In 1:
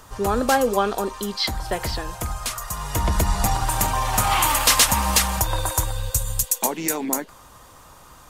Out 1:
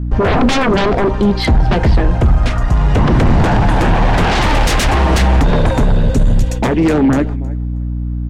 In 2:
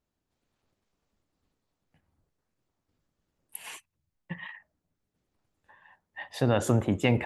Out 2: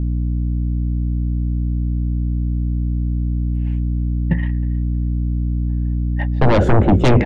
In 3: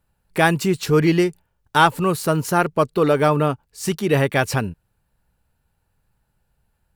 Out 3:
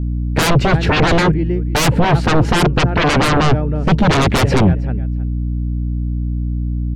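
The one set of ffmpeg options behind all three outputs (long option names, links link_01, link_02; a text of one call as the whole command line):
ffmpeg -i in.wav -af "lowpass=2100,equalizer=frequency=1100:width_type=o:width=0.45:gain=-11.5,agate=range=-19dB:threshold=-42dB:ratio=16:detection=peak,aecho=1:1:316|632:0.0668|0.0107,aeval=exprs='val(0)+0.01*(sin(2*PI*60*n/s)+sin(2*PI*2*60*n/s)/2+sin(2*PI*3*60*n/s)/3+sin(2*PI*4*60*n/s)/4+sin(2*PI*5*60*n/s)/5)':channel_layout=same,aeval=exprs='0.501*sin(PI/2*7.94*val(0)/0.501)':channel_layout=same,lowshelf=frequency=480:gain=8.5,volume=-7.5dB" out.wav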